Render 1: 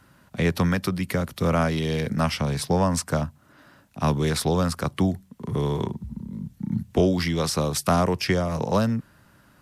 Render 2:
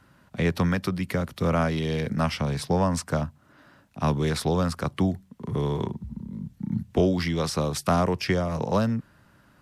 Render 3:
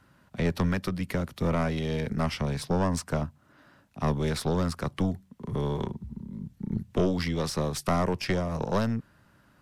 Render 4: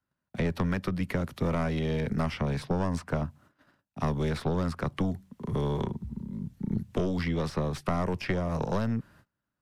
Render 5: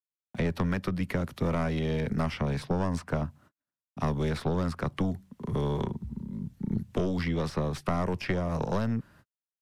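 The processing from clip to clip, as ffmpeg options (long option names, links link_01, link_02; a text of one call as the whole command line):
ffmpeg -i in.wav -af "highshelf=frequency=6800:gain=-7,volume=-1.5dB" out.wav
ffmpeg -i in.wav -af "aeval=exprs='(tanh(6.31*val(0)+0.6)-tanh(0.6))/6.31':channel_layout=same" out.wav
ffmpeg -i in.wav -filter_complex "[0:a]agate=range=-27dB:threshold=-55dB:ratio=16:detection=peak,acrossover=split=170|3100[link_01][link_02][link_03];[link_01]acompressor=threshold=-31dB:ratio=4[link_04];[link_02]acompressor=threshold=-30dB:ratio=4[link_05];[link_03]acompressor=threshold=-53dB:ratio=4[link_06];[link_04][link_05][link_06]amix=inputs=3:normalize=0,volume=2dB" out.wav
ffmpeg -i in.wav -af "agate=range=-33dB:threshold=-56dB:ratio=16:detection=peak" out.wav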